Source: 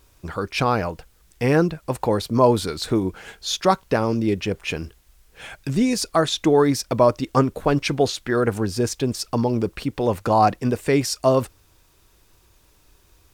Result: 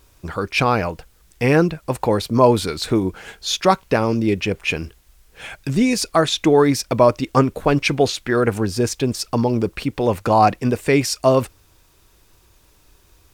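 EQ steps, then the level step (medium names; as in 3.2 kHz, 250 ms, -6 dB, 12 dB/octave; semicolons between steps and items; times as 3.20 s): dynamic bell 2.4 kHz, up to +5 dB, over -43 dBFS, Q 2.8; +2.5 dB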